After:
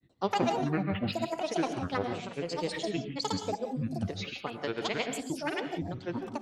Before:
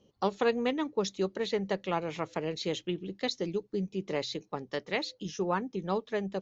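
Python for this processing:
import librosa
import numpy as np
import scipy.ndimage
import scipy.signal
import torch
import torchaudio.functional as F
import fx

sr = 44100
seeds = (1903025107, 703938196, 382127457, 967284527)

y = fx.granulator(x, sr, seeds[0], grain_ms=100.0, per_s=20.0, spray_ms=100.0, spread_st=12)
y = fx.rev_gated(y, sr, seeds[1], gate_ms=200, shape='rising', drr_db=7.5)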